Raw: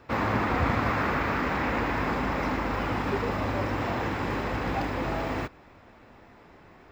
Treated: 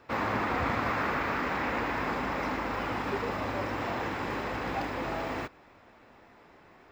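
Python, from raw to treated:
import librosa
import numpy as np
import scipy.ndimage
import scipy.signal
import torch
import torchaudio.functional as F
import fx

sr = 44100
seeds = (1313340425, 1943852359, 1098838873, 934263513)

y = fx.low_shelf(x, sr, hz=200.0, db=-8.0)
y = y * librosa.db_to_amplitude(-2.0)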